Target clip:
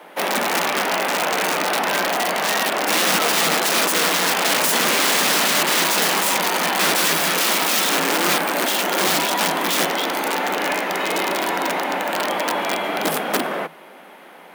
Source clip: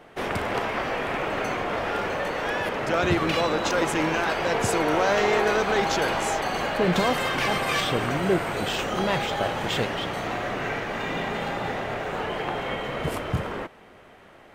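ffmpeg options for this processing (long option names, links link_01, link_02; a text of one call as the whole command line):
ffmpeg -i in.wav -af "aexciter=amount=2.9:drive=7.5:freq=9700,aeval=exprs='(mod(10*val(0)+1,2)-1)/10':channel_layout=same,afreqshift=160,volume=7dB" out.wav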